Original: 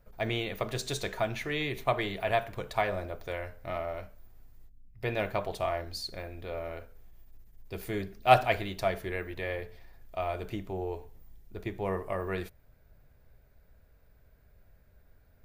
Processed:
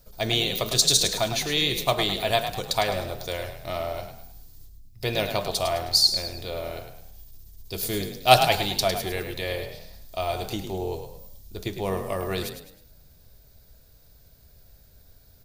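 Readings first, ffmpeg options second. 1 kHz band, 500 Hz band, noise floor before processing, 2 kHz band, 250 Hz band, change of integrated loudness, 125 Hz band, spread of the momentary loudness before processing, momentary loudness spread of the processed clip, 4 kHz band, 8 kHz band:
+4.5 dB, +4.5 dB, −62 dBFS, +4.5 dB, +5.0 dB, +8.0 dB, +5.0 dB, 11 LU, 18 LU, +17.0 dB, +20.0 dB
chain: -filter_complex "[0:a]highshelf=frequency=3000:width_type=q:width=1.5:gain=13,asplit=2[link_01][link_02];[link_02]asplit=4[link_03][link_04][link_05][link_06];[link_03]adelay=105,afreqshift=34,volume=-8.5dB[link_07];[link_04]adelay=210,afreqshift=68,volume=-16.9dB[link_08];[link_05]adelay=315,afreqshift=102,volume=-25.3dB[link_09];[link_06]adelay=420,afreqshift=136,volume=-33.7dB[link_10];[link_07][link_08][link_09][link_10]amix=inputs=4:normalize=0[link_11];[link_01][link_11]amix=inputs=2:normalize=0,volume=4.5dB"

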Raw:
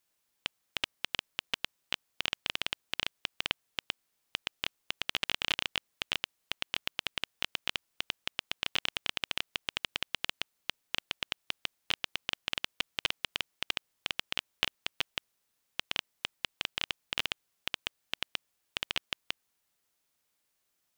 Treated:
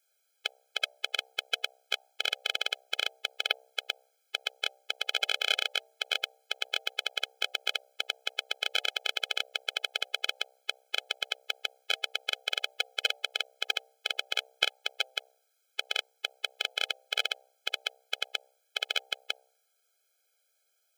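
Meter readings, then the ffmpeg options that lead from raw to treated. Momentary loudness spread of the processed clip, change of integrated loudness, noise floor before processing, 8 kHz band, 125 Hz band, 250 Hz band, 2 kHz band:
6 LU, +4.0 dB, −79 dBFS, +4.5 dB, below −40 dB, below −20 dB, +3.5 dB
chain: -af "bandreject=frequency=65.13:width_type=h:width=4,bandreject=frequency=130.26:width_type=h:width=4,bandreject=frequency=195.39:width_type=h:width=4,bandreject=frequency=260.52:width_type=h:width=4,bandreject=frequency=325.65:width_type=h:width=4,bandreject=frequency=390.78:width_type=h:width=4,bandreject=frequency=455.91:width_type=h:width=4,bandreject=frequency=521.04:width_type=h:width=4,bandreject=frequency=586.17:width_type=h:width=4,bandreject=frequency=651.3:width_type=h:width=4,bandreject=frequency=716.43:width_type=h:width=4,bandreject=frequency=781.56:width_type=h:width=4,bandreject=frequency=846.69:width_type=h:width=4,afftfilt=real='re*eq(mod(floor(b*sr/1024/430),2),1)':imag='im*eq(mod(floor(b*sr/1024/430),2),1)':win_size=1024:overlap=0.75,volume=7dB"

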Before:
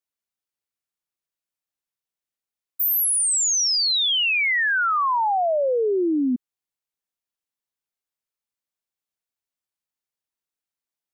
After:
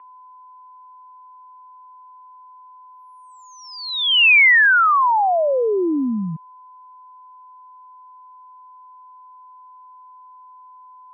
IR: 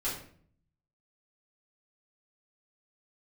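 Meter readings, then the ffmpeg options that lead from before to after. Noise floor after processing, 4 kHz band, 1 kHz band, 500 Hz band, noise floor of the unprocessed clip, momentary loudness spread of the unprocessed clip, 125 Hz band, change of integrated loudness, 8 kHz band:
−45 dBFS, +1.5 dB, +5.0 dB, +2.0 dB, below −85 dBFS, 5 LU, can't be measured, +5.0 dB, below −30 dB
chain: -af "aeval=exprs='val(0)+0.00447*sin(2*PI*1100*n/s)':channel_layout=same,highpass=frequency=300:width_type=q:width=0.5412,highpass=frequency=300:width_type=q:width=1.307,lowpass=frequency=2800:width_type=q:width=0.5176,lowpass=frequency=2800:width_type=q:width=0.7071,lowpass=frequency=2800:width_type=q:width=1.932,afreqshift=-89,crystalizer=i=7.5:c=0,volume=1.5dB"

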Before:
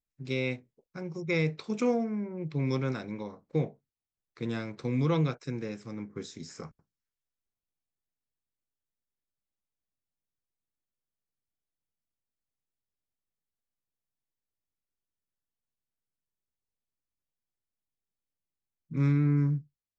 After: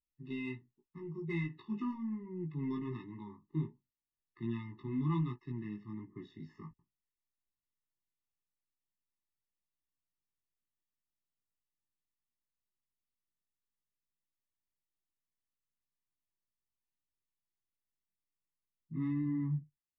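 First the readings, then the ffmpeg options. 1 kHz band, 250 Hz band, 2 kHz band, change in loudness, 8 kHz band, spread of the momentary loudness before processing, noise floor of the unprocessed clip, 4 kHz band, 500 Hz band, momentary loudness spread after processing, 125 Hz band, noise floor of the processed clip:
−8.5 dB, −5.5 dB, −11.0 dB, −8.0 dB, can't be measured, 15 LU, below −85 dBFS, −15.0 dB, −14.5 dB, 15 LU, −9.0 dB, below −85 dBFS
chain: -filter_complex "[0:a]lowpass=frequency=3100:width=0.5412,lowpass=frequency=3100:width=1.3066,asplit=2[link_01][link_02];[link_02]asoftclip=type=tanh:threshold=-33.5dB,volume=-10dB[link_03];[link_01][link_03]amix=inputs=2:normalize=0,flanger=delay=16.5:depth=2.9:speed=1.3,afftfilt=real='re*eq(mod(floor(b*sr/1024/430),2),0)':imag='im*eq(mod(floor(b*sr/1024/430),2),0)':win_size=1024:overlap=0.75,volume=-4dB"

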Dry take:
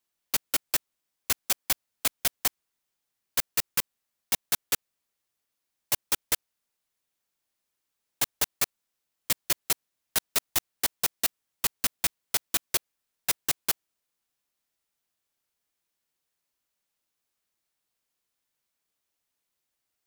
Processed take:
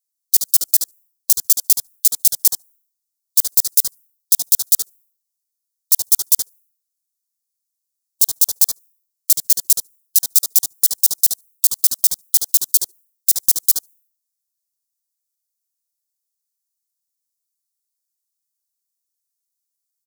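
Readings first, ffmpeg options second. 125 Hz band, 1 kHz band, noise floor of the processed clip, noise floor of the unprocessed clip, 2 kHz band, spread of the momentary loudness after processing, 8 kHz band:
can't be measured, below −10 dB, −80 dBFS, −83 dBFS, below −15 dB, 4 LU, +13.5 dB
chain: -filter_complex "[0:a]asplit=2[link_01][link_02];[link_02]adelay=73,lowpass=frequency=1100:poles=1,volume=-5dB,asplit=2[link_03][link_04];[link_04]adelay=73,lowpass=frequency=1100:poles=1,volume=0.21,asplit=2[link_05][link_06];[link_06]adelay=73,lowpass=frequency=1100:poles=1,volume=0.21[link_07];[link_03][link_05][link_07]amix=inputs=3:normalize=0[link_08];[link_01][link_08]amix=inputs=2:normalize=0,asoftclip=type=hard:threshold=-24dB,aexciter=amount=10.1:drive=8.9:freq=4000,alimiter=limit=-1.5dB:level=0:latency=1:release=21,afftdn=noise_reduction=24:noise_floor=-38"

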